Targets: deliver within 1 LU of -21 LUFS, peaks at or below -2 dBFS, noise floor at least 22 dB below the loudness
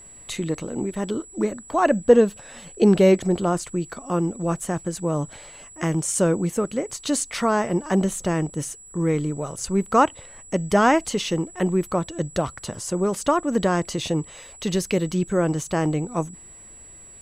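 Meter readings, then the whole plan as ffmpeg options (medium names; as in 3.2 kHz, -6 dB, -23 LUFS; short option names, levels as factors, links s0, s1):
steady tone 7.8 kHz; tone level -43 dBFS; loudness -23.0 LUFS; peak level -3.0 dBFS; loudness target -21.0 LUFS
-> -af "bandreject=f=7800:w=30"
-af "volume=1.26,alimiter=limit=0.794:level=0:latency=1"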